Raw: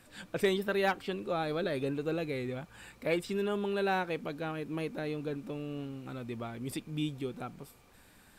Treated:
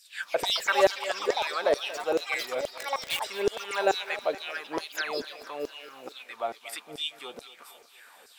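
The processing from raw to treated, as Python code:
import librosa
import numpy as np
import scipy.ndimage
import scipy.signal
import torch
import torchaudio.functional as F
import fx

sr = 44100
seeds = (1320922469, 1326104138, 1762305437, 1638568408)

p1 = fx.filter_lfo_highpass(x, sr, shape='saw_down', hz=2.3, low_hz=420.0, high_hz=5600.0, q=4.0)
p2 = fx.quant_dither(p1, sr, seeds[0], bits=6, dither='none', at=(2.7, 3.22))
p3 = fx.spec_paint(p2, sr, seeds[1], shape='fall', start_s=4.97, length_s=0.24, low_hz=220.0, high_hz=7600.0, level_db=-41.0)
p4 = fx.echo_pitch(p3, sr, ms=193, semitones=6, count=2, db_per_echo=-6.0)
p5 = p4 + fx.echo_thinned(p4, sr, ms=232, feedback_pct=60, hz=230.0, wet_db=-16.0, dry=0)
y = F.gain(torch.from_numpy(p5), 4.5).numpy()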